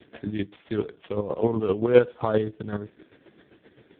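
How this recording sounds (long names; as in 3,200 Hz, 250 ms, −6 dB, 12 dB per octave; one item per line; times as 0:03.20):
a buzz of ramps at a fixed pitch in blocks of 8 samples
chopped level 7.7 Hz, depth 60%, duty 30%
AMR narrowband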